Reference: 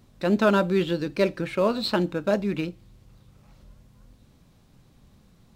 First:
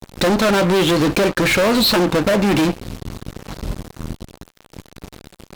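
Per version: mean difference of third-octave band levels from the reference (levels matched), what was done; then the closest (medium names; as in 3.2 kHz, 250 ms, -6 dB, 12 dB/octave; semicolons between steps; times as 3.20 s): 11.0 dB: dynamic bell 140 Hz, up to -4 dB, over -39 dBFS, Q 0.85; compression 8:1, threshold -30 dBFS, peak gain reduction 14.5 dB; fuzz box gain 44 dB, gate -51 dBFS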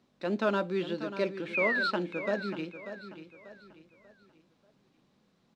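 6.0 dB: painted sound fall, 1.54–1.91 s, 1.3–2.6 kHz -22 dBFS; three-band isolator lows -22 dB, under 170 Hz, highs -16 dB, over 6.5 kHz; on a send: feedback delay 589 ms, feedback 37%, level -11.5 dB; on the sum: trim -7.5 dB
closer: second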